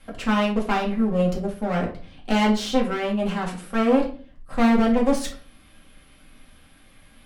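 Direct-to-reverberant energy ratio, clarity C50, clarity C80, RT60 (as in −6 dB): −3.0 dB, 8.5 dB, 14.5 dB, 0.40 s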